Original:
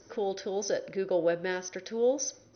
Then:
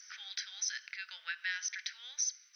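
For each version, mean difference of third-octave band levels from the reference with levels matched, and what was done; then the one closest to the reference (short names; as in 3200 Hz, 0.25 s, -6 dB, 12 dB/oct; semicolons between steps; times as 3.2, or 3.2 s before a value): 15.0 dB: steep high-pass 1600 Hz 36 dB/oct; compressor 2:1, threshold -44 dBFS, peak gain reduction 8 dB; gain +7.5 dB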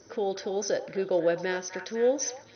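1.5 dB: HPF 66 Hz; delay with a stepping band-pass 0.252 s, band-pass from 1100 Hz, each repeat 0.7 oct, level -5.5 dB; gain +2 dB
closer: second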